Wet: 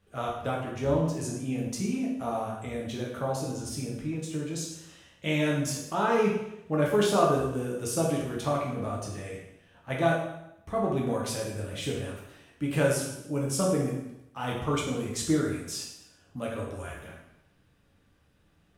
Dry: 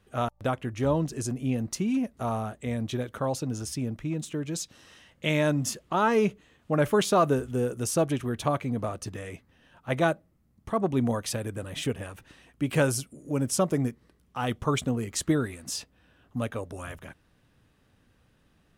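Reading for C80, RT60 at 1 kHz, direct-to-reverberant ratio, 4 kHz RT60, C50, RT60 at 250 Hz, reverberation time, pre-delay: 6.5 dB, 0.85 s, -3.5 dB, 0.80 s, 3.0 dB, 0.85 s, 0.85 s, 4 ms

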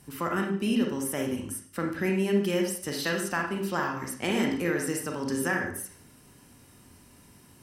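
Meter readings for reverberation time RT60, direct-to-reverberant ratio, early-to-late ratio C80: 0.55 s, 1.0 dB, 9.0 dB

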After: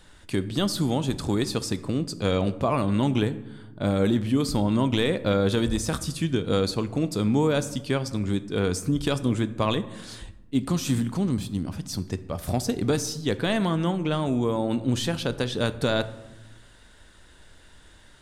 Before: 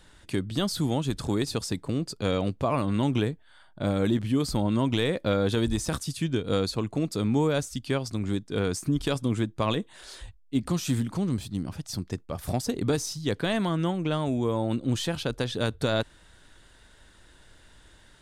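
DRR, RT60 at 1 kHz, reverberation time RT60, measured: 12.0 dB, 0.95 s, 1.1 s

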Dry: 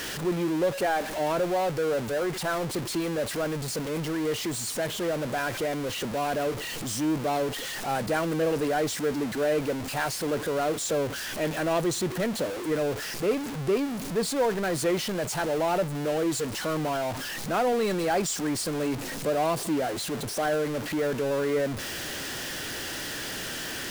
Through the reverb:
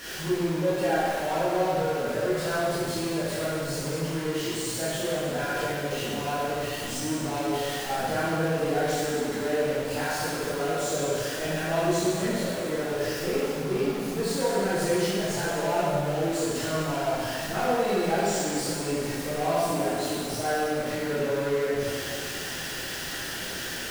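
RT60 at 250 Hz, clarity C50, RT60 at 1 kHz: 2.2 s, -4.0 dB, 2.1 s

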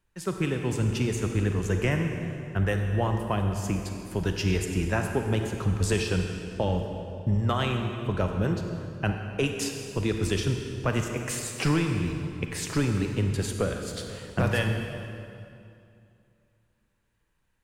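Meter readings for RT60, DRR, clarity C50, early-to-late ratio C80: 2.5 s, 3.5 dB, 4.0 dB, 5.5 dB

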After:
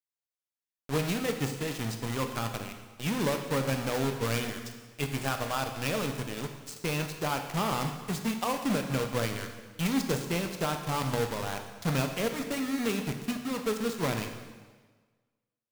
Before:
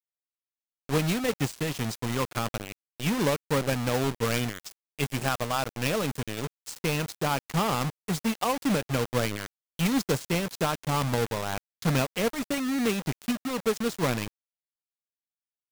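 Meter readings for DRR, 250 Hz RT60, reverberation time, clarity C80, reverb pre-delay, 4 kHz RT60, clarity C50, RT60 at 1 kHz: 5.0 dB, 1.4 s, 1.4 s, 9.0 dB, 7 ms, 1.3 s, 7.0 dB, 1.4 s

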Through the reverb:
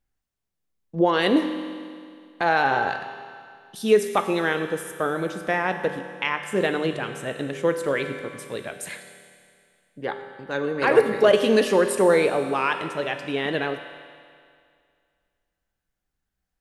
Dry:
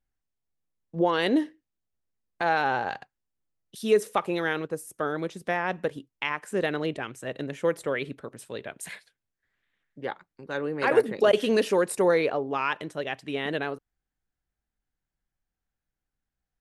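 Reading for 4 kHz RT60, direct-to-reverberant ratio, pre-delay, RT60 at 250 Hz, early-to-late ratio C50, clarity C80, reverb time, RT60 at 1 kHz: 2.2 s, 6.5 dB, 5 ms, 2.2 s, 8.0 dB, 9.0 dB, 2.2 s, 2.2 s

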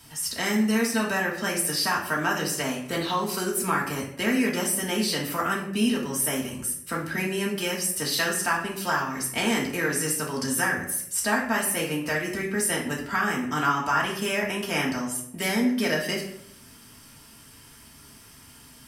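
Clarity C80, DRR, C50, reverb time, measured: 9.5 dB, -3.5 dB, 6.0 dB, 0.70 s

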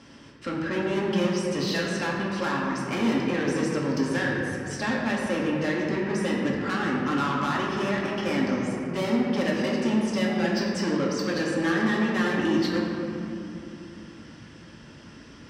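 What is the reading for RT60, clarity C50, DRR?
2.8 s, 0.0 dB, -4.0 dB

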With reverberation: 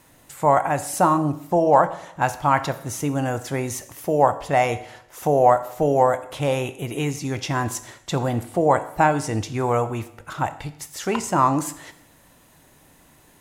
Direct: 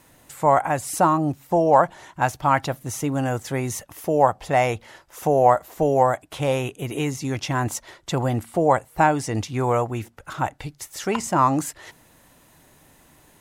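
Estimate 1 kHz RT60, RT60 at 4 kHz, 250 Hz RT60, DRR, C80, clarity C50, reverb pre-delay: 0.75 s, 0.75 s, 0.75 s, 11.5 dB, 17.0 dB, 14.5 dB, 18 ms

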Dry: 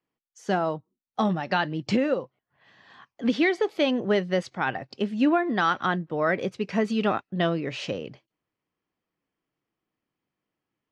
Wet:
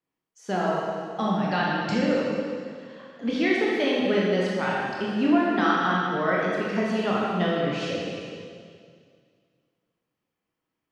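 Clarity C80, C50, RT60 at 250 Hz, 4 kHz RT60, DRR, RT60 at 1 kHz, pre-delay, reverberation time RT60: 0.0 dB, -2.0 dB, 2.2 s, 2.1 s, -5.0 dB, 2.1 s, 18 ms, 2.1 s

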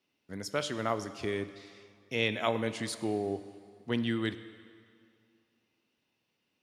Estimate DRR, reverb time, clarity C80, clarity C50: 11.5 dB, 2.3 s, 13.5 dB, 13.0 dB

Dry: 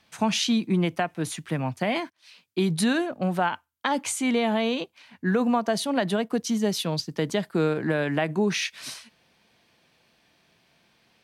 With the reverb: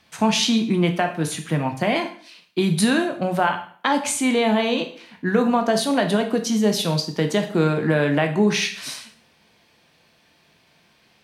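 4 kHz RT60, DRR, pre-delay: 0.45 s, 5.0 dB, 6 ms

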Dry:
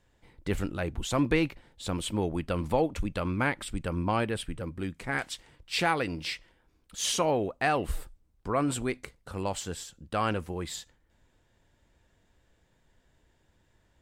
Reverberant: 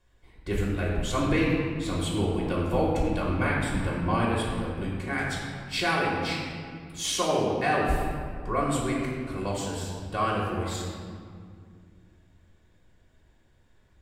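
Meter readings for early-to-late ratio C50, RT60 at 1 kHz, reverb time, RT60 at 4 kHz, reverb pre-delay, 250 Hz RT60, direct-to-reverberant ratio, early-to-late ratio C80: 0.5 dB, 2.1 s, 2.1 s, 1.3 s, 3 ms, 3.1 s, -5.0 dB, 2.0 dB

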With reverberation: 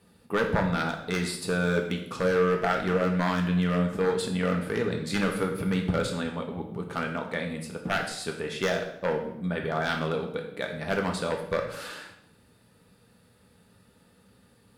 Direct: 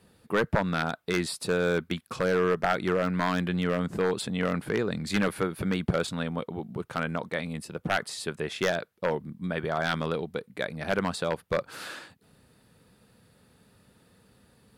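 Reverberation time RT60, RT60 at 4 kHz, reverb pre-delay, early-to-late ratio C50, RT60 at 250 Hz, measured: 0.80 s, 0.65 s, 3 ms, 6.5 dB, 0.95 s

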